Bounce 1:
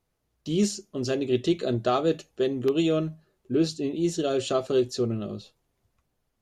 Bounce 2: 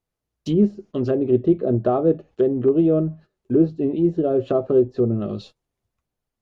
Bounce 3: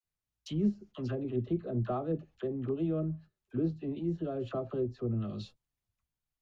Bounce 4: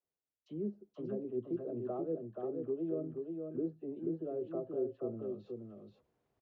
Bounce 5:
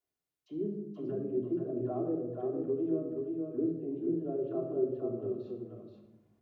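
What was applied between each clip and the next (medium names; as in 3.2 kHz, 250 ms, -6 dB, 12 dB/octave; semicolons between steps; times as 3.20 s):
gate -49 dBFS, range -14 dB; low-pass that closes with the level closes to 680 Hz, closed at -23 dBFS; trim +7 dB
peaking EQ 440 Hz -11 dB 1.9 oct; phase dispersion lows, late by 43 ms, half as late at 680 Hz; trim -6.5 dB
reverse; upward compressor, threshold -42 dBFS; reverse; band-pass filter 440 Hz, Q 1.7; delay 479 ms -4.5 dB; trim -1.5 dB
simulated room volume 3200 m³, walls furnished, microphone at 3.2 m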